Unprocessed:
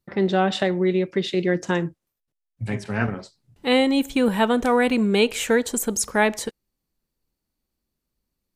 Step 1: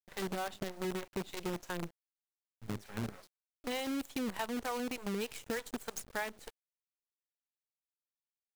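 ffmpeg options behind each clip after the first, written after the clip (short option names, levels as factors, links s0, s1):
-filter_complex "[0:a]acrossover=split=460[s0][s1];[s0]aeval=exprs='val(0)*(1-1/2+1/2*cos(2*PI*3.3*n/s))':c=same[s2];[s1]aeval=exprs='val(0)*(1-1/2-1/2*cos(2*PI*3.3*n/s))':c=same[s3];[s2][s3]amix=inputs=2:normalize=0,acrusher=bits=5:dc=4:mix=0:aa=0.000001,acompressor=threshold=0.0631:ratio=6,volume=0.355"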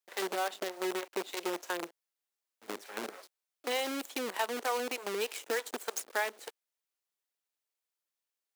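-af "highpass=f=340:w=0.5412,highpass=f=340:w=1.3066,volume=1.88"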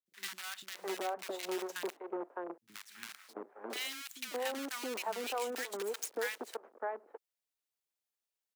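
-filter_complex "[0:a]acrossover=split=180|1300[s0][s1][s2];[s2]adelay=60[s3];[s1]adelay=670[s4];[s0][s4][s3]amix=inputs=3:normalize=0,volume=0.75"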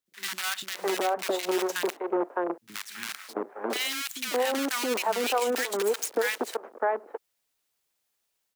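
-af "dynaudnorm=f=160:g=3:m=2,alimiter=limit=0.0668:level=0:latency=1:release=52,volume=2.24"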